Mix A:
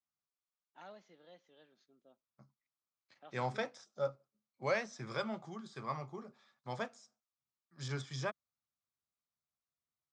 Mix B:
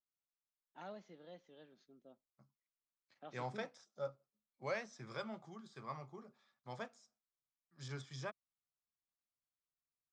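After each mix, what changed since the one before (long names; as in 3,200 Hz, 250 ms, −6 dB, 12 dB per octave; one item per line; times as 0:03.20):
first voice: add low-shelf EQ 480 Hz +8.5 dB
second voice −6.5 dB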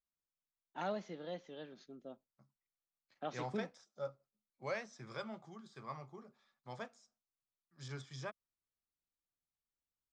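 first voice +11.0 dB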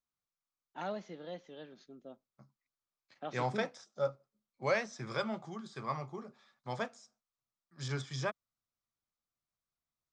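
second voice +9.0 dB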